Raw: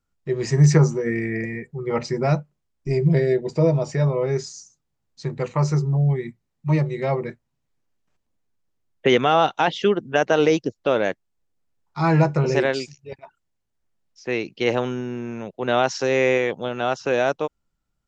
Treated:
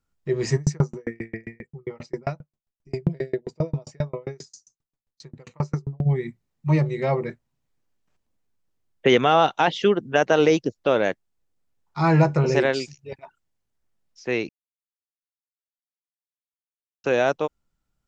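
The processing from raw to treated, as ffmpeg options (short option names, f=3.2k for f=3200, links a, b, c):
-filter_complex "[0:a]asplit=3[a][b][c];[a]afade=t=out:st=0.56:d=0.02[d];[b]aeval=exprs='val(0)*pow(10,-38*if(lt(mod(7.5*n/s,1),2*abs(7.5)/1000),1-mod(7.5*n/s,1)/(2*abs(7.5)/1000),(mod(7.5*n/s,1)-2*abs(7.5)/1000)/(1-2*abs(7.5)/1000))/20)':c=same,afade=t=in:st=0.56:d=0.02,afade=t=out:st=6.05:d=0.02[e];[c]afade=t=in:st=6.05:d=0.02[f];[d][e][f]amix=inputs=3:normalize=0,asplit=3[g][h][i];[g]atrim=end=14.49,asetpts=PTS-STARTPTS,afade=t=out:st=14.486:d=0.004:c=hsin[j];[h]atrim=start=14.49:end=17.04,asetpts=PTS-STARTPTS,volume=0[k];[i]atrim=start=17.04,asetpts=PTS-STARTPTS,afade=t=in:d=0.004:c=hsin[l];[j][k][l]concat=n=3:v=0:a=1"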